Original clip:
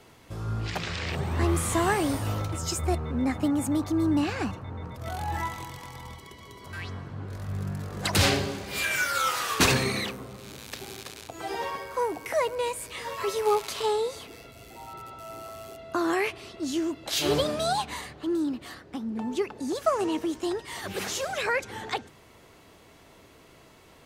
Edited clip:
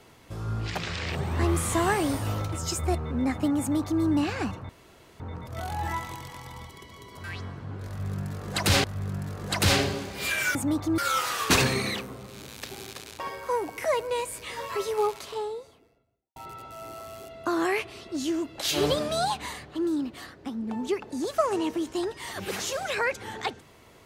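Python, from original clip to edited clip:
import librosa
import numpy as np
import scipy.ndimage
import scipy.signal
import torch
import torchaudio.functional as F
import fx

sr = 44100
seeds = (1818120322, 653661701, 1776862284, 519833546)

y = fx.studio_fade_out(x, sr, start_s=13.01, length_s=1.83)
y = fx.edit(y, sr, fx.duplicate(start_s=3.59, length_s=0.43, to_s=9.08),
    fx.insert_room_tone(at_s=4.69, length_s=0.51),
    fx.repeat(start_s=7.37, length_s=0.96, count=2),
    fx.cut(start_s=11.3, length_s=0.38), tone=tone)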